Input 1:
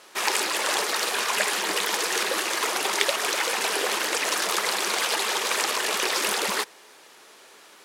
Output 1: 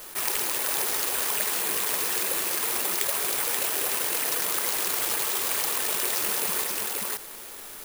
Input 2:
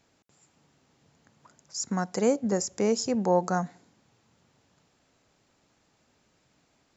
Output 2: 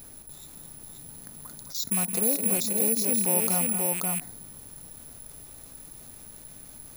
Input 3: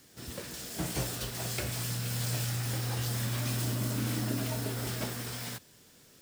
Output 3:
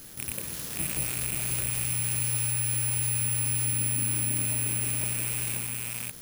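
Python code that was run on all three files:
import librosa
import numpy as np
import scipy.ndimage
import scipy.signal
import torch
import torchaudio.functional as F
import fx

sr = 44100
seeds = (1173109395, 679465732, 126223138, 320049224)

p1 = fx.rattle_buzz(x, sr, strikes_db=-42.0, level_db=-21.0)
p2 = fx.low_shelf(p1, sr, hz=260.0, db=8.0)
p3 = np.sign(p2) * np.maximum(np.abs(p2) - 10.0 ** (-44.5 / 20.0), 0.0)
p4 = p2 + (p3 * librosa.db_to_amplitude(-5.0))
p5 = fx.dmg_noise_colour(p4, sr, seeds[0], colour='brown', level_db=-64.0)
p6 = p5 + fx.echo_multitap(p5, sr, ms=(165, 214, 532), db=(-18.5, -11.5, -5.0), dry=0)
p7 = (np.kron(p6[::4], np.eye(4)[0]) * 4)[:len(p6)]
p8 = fx.env_flatten(p7, sr, amount_pct=50)
y = p8 * librosa.db_to_amplitude(-15.0)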